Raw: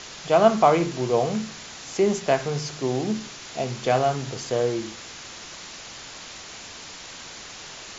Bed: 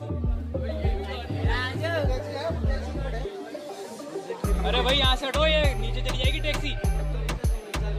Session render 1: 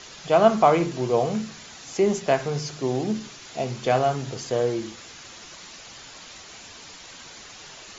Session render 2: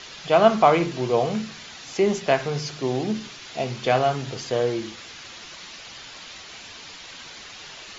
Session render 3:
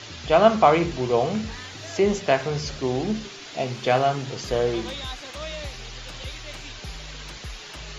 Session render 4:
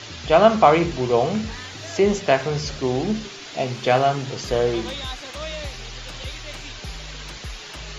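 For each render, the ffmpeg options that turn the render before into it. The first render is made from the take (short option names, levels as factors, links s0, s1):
-af "afftdn=nr=6:nf=-41"
-af "lowpass=3800,highshelf=f=2400:g=10"
-filter_complex "[1:a]volume=0.224[s0];[0:a][s0]amix=inputs=2:normalize=0"
-af "volume=1.33,alimiter=limit=0.794:level=0:latency=1"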